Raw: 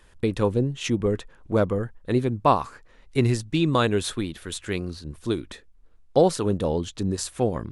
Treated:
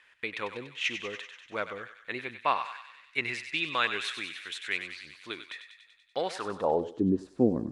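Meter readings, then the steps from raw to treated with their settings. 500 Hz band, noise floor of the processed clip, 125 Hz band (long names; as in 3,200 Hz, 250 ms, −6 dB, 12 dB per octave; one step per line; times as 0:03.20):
−9.5 dB, −61 dBFS, −16.0 dB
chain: feedback echo with a high-pass in the loop 96 ms, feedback 72%, high-pass 1,200 Hz, level −8 dB
band-pass filter sweep 2,200 Hz → 270 Hz, 0:06.30–0:07.09
level +6 dB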